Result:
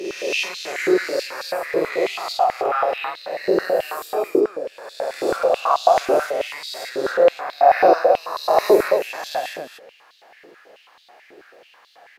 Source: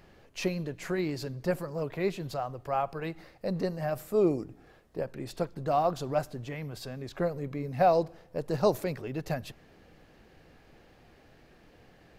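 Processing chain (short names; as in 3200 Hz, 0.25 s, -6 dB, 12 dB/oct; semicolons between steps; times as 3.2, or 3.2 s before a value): spectral swells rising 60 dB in 1.70 s; loudspeakers at several distances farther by 17 m -1 dB, 37 m -11 dB, 98 m -6 dB; stepped high-pass 9.2 Hz 380–3800 Hz; gain +1.5 dB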